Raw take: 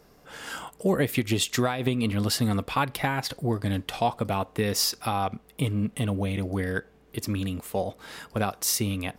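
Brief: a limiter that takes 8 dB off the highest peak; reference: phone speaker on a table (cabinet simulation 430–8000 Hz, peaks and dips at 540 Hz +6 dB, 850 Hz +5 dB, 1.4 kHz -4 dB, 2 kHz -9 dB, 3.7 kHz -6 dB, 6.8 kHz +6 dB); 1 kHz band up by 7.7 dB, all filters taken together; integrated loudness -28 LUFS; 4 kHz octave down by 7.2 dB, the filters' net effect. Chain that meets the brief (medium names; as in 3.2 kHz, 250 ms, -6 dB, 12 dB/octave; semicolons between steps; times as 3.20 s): peaking EQ 1 kHz +7 dB; peaking EQ 4 kHz -8.5 dB; peak limiter -15.5 dBFS; cabinet simulation 430–8000 Hz, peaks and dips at 540 Hz +6 dB, 850 Hz +5 dB, 1.4 kHz -4 dB, 2 kHz -9 dB, 3.7 kHz -6 dB, 6.8 kHz +6 dB; trim +1.5 dB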